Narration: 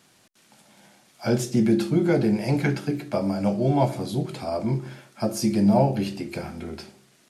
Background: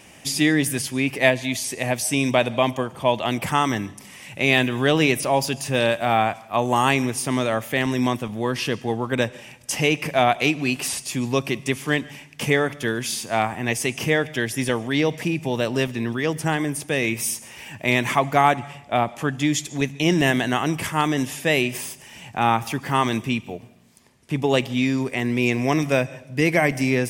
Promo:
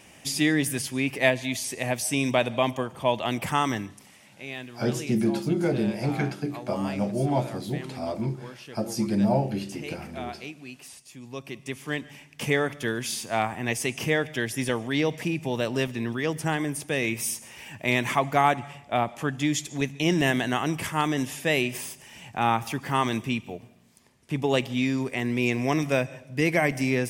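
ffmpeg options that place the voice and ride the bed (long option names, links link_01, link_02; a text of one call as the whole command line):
ffmpeg -i stem1.wav -i stem2.wav -filter_complex "[0:a]adelay=3550,volume=-4dB[link_01];[1:a]volume=11dB,afade=type=out:start_time=3.69:duration=0.63:silence=0.177828,afade=type=in:start_time=11.21:duration=1.4:silence=0.177828[link_02];[link_01][link_02]amix=inputs=2:normalize=0" out.wav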